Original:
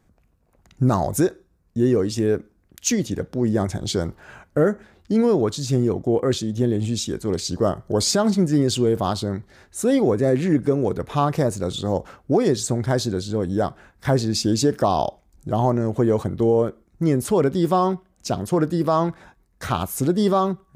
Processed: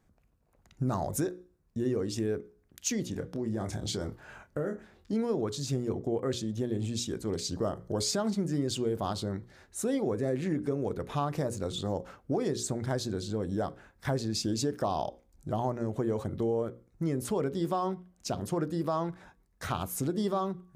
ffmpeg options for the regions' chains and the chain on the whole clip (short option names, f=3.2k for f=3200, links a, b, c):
-filter_complex "[0:a]asettb=1/sr,asplit=3[a][b][c];[a]atrim=end=3.104[d];[b]atrim=start=3.1:end=5.13,asetpts=PTS-STARTPTS,afade=t=in:d=0.004:c=qsin,afade=t=out:st=2.026:d=0.004:c=qsin,asplit=2[e][f];[f]adelay=27,volume=-8.5dB[g];[e][g]amix=inputs=2:normalize=0,atrim=end_sample=89523,acompressor=threshold=-22dB:ratio=2.5:attack=3.2:release=140:knee=1:detection=peak[h];[c]atrim=start=5.126[i];[d][h]acrossfade=d=0.004:c1=hsin:c2=qsin[j];[j][i]acrossfade=d=0.004:c1=qsin:c2=hsin,bandreject=f=60:t=h:w=6,bandreject=f=120:t=h:w=6,bandreject=f=180:t=h:w=6,bandreject=f=240:t=h:w=6,bandreject=f=300:t=h:w=6,bandreject=f=360:t=h:w=6,bandreject=f=420:t=h:w=6,bandreject=f=480:t=h:w=6,bandreject=f=540:t=h:w=6,acompressor=threshold=-23dB:ratio=2,volume=-6.5dB"